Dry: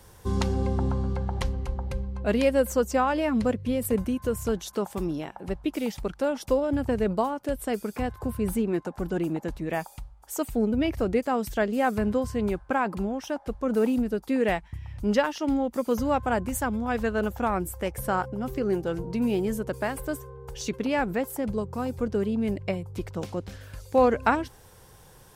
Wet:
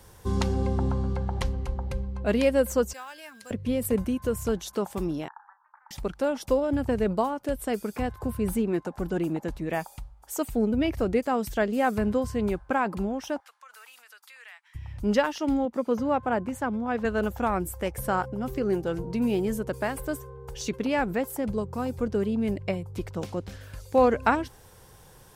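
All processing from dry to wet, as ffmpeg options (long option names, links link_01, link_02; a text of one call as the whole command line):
ffmpeg -i in.wav -filter_complex "[0:a]asettb=1/sr,asplit=3[link_01][link_02][link_03];[link_01]atrim=end=2.934[link_04];[link_02]atrim=start=2.93:end=3.51,asetpts=PTS-STARTPTS,afade=type=in:duration=0.004:curve=qsin,afade=type=out:start_time=0.576:duration=0.004:curve=qsin,aderivative,acrusher=bits=5:mode=log:mix=0:aa=0.000001,aeval=exprs='val(0)+0.00224*sin(2*PI*1600*n/s)':channel_layout=same[link_05];[link_03]atrim=start=3.506[link_06];[link_04][link_05]acrossfade=duration=0.004:curve1=hsin:curve2=qsin[link_07];[link_07][link_06]acrossfade=duration=0.004:curve1=qsin:curve2=hsin,asettb=1/sr,asplit=3[link_08][link_09][link_10];[link_08]atrim=end=5.284[link_11];[link_09]atrim=start=5.28:end=5.91,asetpts=PTS-STARTPTS,afade=type=in:duration=0.004:curve=qsin,afade=type=out:start_time=0.626:duration=0.004:curve=qsin,acompressor=threshold=-32dB:ratio=2.5:attack=3.2:release=140:knee=1:detection=peak,asuperpass=centerf=1200:order=12:qfactor=1.4,asplit=2[link_12][link_13];[link_13]adelay=33,volume=-9.5dB[link_14];[link_12][link_14]amix=inputs=2:normalize=0,atrim=end_sample=27783[link_15];[link_10]atrim=start=5.906[link_16];[link_11][link_15]acrossfade=duration=0.004:curve1=hsin:curve2=qsin[link_17];[link_17][link_16]acrossfade=duration=0.004:curve1=qsin:curve2=hsin,asettb=1/sr,asplit=3[link_18][link_19][link_20];[link_18]atrim=end=13.404[link_21];[link_19]atrim=start=13.4:end=14.75,asetpts=PTS-STARTPTS,afade=type=in:duration=0.004:curve=qsin,afade=type=out:start_time=1.346:duration=0.004:curve=qsin,highpass=frequency=1200:width=0.5412,highpass=frequency=1200:width=1.3066,acompressor=threshold=-48dB:ratio=3:attack=3.2:release=140:knee=1:detection=peak[link_22];[link_20]atrim=start=14.746[link_23];[link_21][link_22]acrossfade=duration=0.004:curve1=hsin:curve2=qsin[link_24];[link_24][link_23]acrossfade=duration=0.004:curve1=qsin:curve2=hsin,asettb=1/sr,asplit=3[link_25][link_26][link_27];[link_25]atrim=end=15.654[link_28];[link_26]atrim=start=15.65:end=17.05,asetpts=PTS-STARTPTS,afade=type=in:duration=0.004:curve=qsin,afade=type=out:start_time=1.396:duration=0.004:curve=qsin,highpass=130,aemphasis=mode=reproduction:type=75kf[link_29];[link_27]atrim=start=17.046[link_30];[link_28][link_29]acrossfade=duration=0.004:curve1=hsin:curve2=qsin[link_31];[link_31][link_30]acrossfade=duration=0.004:curve1=qsin:curve2=hsin" out.wav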